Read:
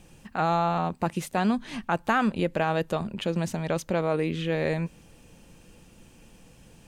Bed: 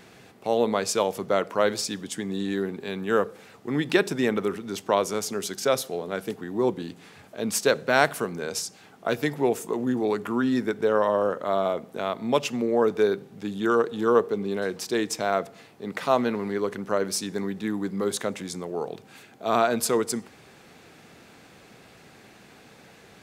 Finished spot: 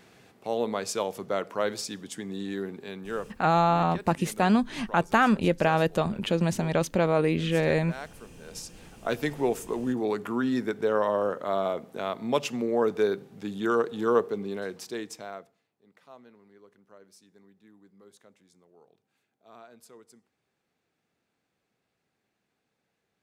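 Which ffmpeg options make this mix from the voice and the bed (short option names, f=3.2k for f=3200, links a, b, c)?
-filter_complex "[0:a]adelay=3050,volume=2.5dB[a];[1:a]volume=11.5dB,afade=t=out:st=2.78:d=0.72:silence=0.188365,afade=t=in:st=8.39:d=0.56:silence=0.141254,afade=t=out:st=14.17:d=1.43:silence=0.0530884[b];[a][b]amix=inputs=2:normalize=0"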